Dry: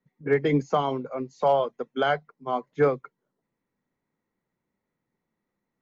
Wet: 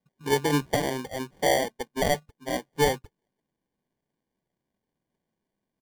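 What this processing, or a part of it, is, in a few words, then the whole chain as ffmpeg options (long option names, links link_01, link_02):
crushed at another speed: -af "asetrate=35280,aresample=44100,acrusher=samples=42:mix=1:aa=0.000001,asetrate=55125,aresample=44100,volume=-1.5dB"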